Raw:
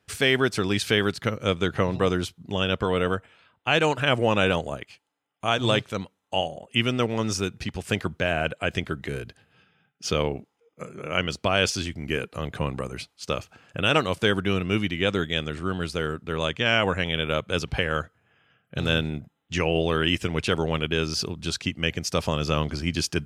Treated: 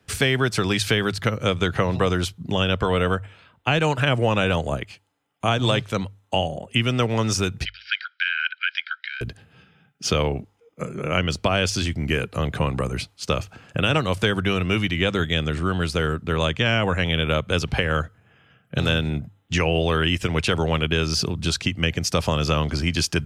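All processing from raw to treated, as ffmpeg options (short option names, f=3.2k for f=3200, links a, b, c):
-filter_complex "[0:a]asettb=1/sr,asplit=3[a][b][c];[a]atrim=end=7.654[d];[b]atrim=start=7.65:end=9.21,asetpts=PTS-STARTPTS,afade=t=in:d=0.004:c=qsin,afade=t=out:st=1.556:d=0.004:c=qsin,asuperpass=centerf=2700:order=20:qfactor=0.7,aecho=1:1:1.3:0.5,atrim=end_sample=68796[e];[c]atrim=start=9.206[f];[d][e]acrossfade=d=0.004:c1=hsin:c2=qsin[g];[g][f]acrossfade=d=0.004:c1=qsin:c2=hsin,lowshelf=f=230:g=8,acrossover=split=160|490[h][i][j];[h]acompressor=threshold=-30dB:ratio=4[k];[i]acompressor=threshold=-34dB:ratio=4[l];[j]acompressor=threshold=-25dB:ratio=4[m];[k][l][m]amix=inputs=3:normalize=0,bandreject=f=50:t=h:w=6,bandreject=f=100:t=h:w=6,volume=5.5dB"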